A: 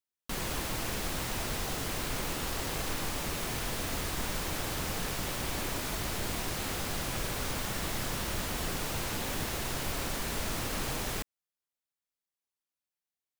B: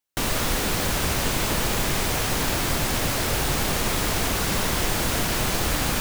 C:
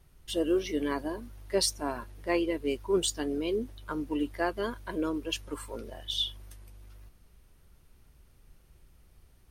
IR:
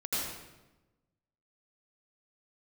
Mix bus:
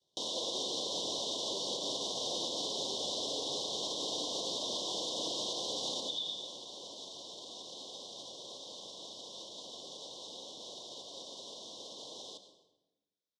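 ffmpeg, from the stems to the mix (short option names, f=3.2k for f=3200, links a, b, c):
-filter_complex "[0:a]alimiter=level_in=7.5dB:limit=-24dB:level=0:latency=1:release=152,volume=-7.5dB,adelay=1150,volume=-5dB,asplit=2[a][b];[b]volume=-14.5dB[c];[1:a]alimiter=limit=-21.5dB:level=0:latency=1:release=174,volume=-3dB,asplit=2[d][e];[e]volume=-8.5dB[f];[2:a]agate=range=-33dB:threshold=-56dB:ratio=3:detection=peak,acompressor=threshold=-34dB:ratio=6,volume=-8.5dB,asplit=2[g][h];[h]volume=-8dB[i];[3:a]atrim=start_sample=2205[j];[c][f][i]amix=inputs=3:normalize=0[k];[k][j]afir=irnorm=-1:irlink=0[l];[a][d][g][l]amix=inputs=4:normalize=0,asuperstop=centerf=1800:order=20:qfactor=0.93,highpass=390,equalizer=f=530:t=q:w=4:g=4,equalizer=f=880:t=q:w=4:g=-6,equalizer=f=1.4k:t=q:w=4:g=-7,equalizer=f=3.7k:t=q:w=4:g=10,equalizer=f=5.6k:t=q:w=4:g=5,lowpass=f=6.7k:w=0.5412,lowpass=f=6.7k:w=1.3066,alimiter=level_in=3dB:limit=-24dB:level=0:latency=1:release=110,volume=-3dB"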